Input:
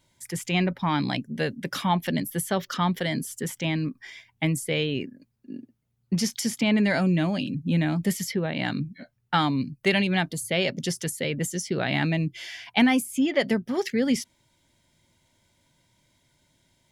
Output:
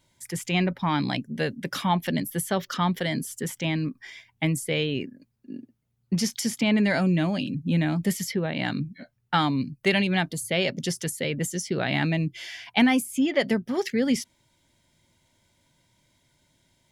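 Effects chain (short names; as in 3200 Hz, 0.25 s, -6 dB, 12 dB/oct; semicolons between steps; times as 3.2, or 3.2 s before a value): nothing audible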